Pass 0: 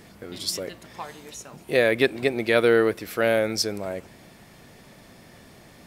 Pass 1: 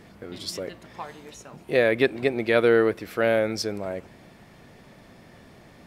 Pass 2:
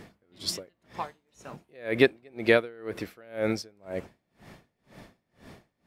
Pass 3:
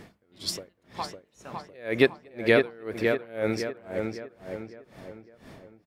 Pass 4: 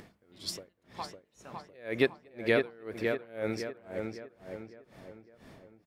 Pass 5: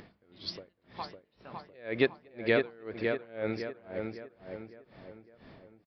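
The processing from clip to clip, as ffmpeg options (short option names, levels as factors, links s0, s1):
-af "highshelf=f=4600:g=-10"
-af "aeval=exprs='val(0)*pow(10,-33*(0.5-0.5*cos(2*PI*2*n/s))/20)':c=same,volume=1.41"
-filter_complex "[0:a]asplit=2[s0][s1];[s1]adelay=556,lowpass=f=2700:p=1,volume=0.631,asplit=2[s2][s3];[s3]adelay=556,lowpass=f=2700:p=1,volume=0.43,asplit=2[s4][s5];[s5]adelay=556,lowpass=f=2700:p=1,volume=0.43,asplit=2[s6][s7];[s7]adelay=556,lowpass=f=2700:p=1,volume=0.43,asplit=2[s8][s9];[s9]adelay=556,lowpass=f=2700:p=1,volume=0.43[s10];[s0][s2][s4][s6][s8][s10]amix=inputs=6:normalize=0"
-af "acompressor=mode=upward:threshold=0.00631:ratio=2.5,volume=0.501"
-af "aresample=11025,aresample=44100"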